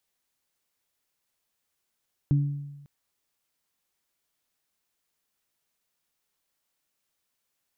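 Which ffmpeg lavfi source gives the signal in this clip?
ffmpeg -f lavfi -i "aevalsrc='0.141*pow(10,-3*t/1.08)*sin(2*PI*143*t)+0.0447*pow(10,-3*t/0.63)*sin(2*PI*286*t)':duration=0.55:sample_rate=44100" out.wav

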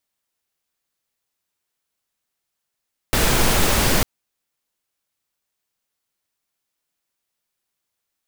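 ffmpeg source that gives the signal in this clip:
ffmpeg -f lavfi -i "anoisesrc=color=pink:amplitude=0.724:duration=0.9:sample_rate=44100:seed=1" out.wav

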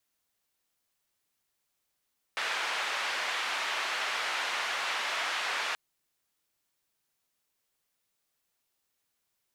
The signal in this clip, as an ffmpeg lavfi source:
ffmpeg -f lavfi -i "anoisesrc=color=white:duration=3.38:sample_rate=44100:seed=1,highpass=frequency=830,lowpass=frequency=2500,volume=-16.9dB" out.wav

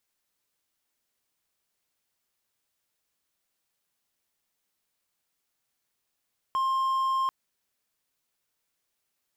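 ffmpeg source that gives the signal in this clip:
ffmpeg -f lavfi -i "aevalsrc='0.0841*(1-4*abs(mod(1060*t+0.25,1)-0.5))':duration=0.74:sample_rate=44100" out.wav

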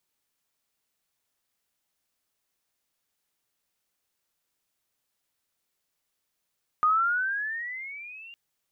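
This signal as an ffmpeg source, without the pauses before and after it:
ffmpeg -f lavfi -i "aevalsrc='pow(10,(-18-25*t/1.51)/20)*sin(2*PI*1220*1.51/(14.5*log(2)/12)*(exp(14.5*log(2)/12*t/1.51)-1))':duration=1.51:sample_rate=44100" out.wav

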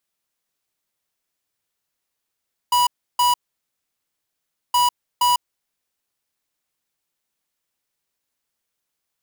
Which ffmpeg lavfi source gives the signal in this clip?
ffmpeg -f lavfi -i "aevalsrc='0.15*(2*lt(mod(978*t,1),0.5)-1)*clip(min(mod(mod(t,2.02),0.47),0.15-mod(mod(t,2.02),0.47))/0.005,0,1)*lt(mod(t,2.02),0.94)':duration=4.04:sample_rate=44100" out.wav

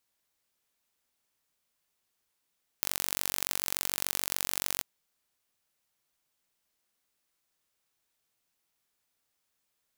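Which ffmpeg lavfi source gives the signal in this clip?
ffmpeg -f lavfi -i "aevalsrc='0.841*eq(mod(n,940),0)*(0.5+0.5*eq(mod(n,1880),0))':duration=1.99:sample_rate=44100" out.wav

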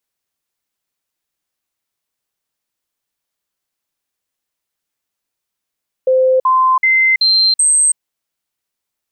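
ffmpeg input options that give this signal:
ffmpeg -f lavfi -i "aevalsrc='0.376*clip(min(mod(t,0.38),0.33-mod(t,0.38))/0.005,0,1)*sin(2*PI*518*pow(2,floor(t/0.38)/1)*mod(t,0.38))':duration=1.9:sample_rate=44100" out.wav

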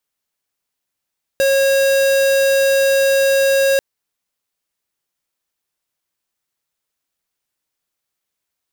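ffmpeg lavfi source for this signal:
ffmpeg -f lavfi -i "aevalsrc='0.2*(2*lt(mod(545*t,1),0.5)-1)':duration=2.39:sample_rate=44100" out.wav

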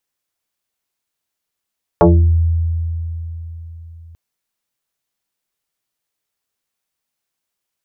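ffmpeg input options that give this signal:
ffmpeg -f lavfi -i "aevalsrc='0.562*pow(10,-3*t/4.05)*sin(2*PI*82.9*t+3.8*pow(10,-3*t/0.45)*sin(2*PI*3.1*82.9*t))':duration=2.14:sample_rate=44100" out.wav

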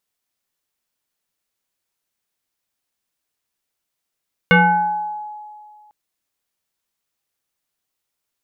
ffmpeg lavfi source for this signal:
ffmpeg -f lavfi -i "aevalsrc='0.447*pow(10,-3*t/2.08)*sin(2*PI*844*t+2.4*pow(10,-3*t/1.03)*sin(2*PI*0.79*844*t))':duration=1.4:sample_rate=44100" out.wav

